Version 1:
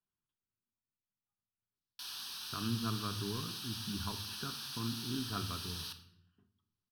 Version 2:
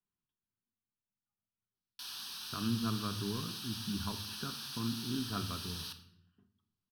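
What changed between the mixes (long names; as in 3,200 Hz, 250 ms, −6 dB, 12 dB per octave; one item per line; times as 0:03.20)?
speech: add parametric band 570 Hz +4 dB 0.32 octaves
master: add parametric band 210 Hz +4 dB 0.65 octaves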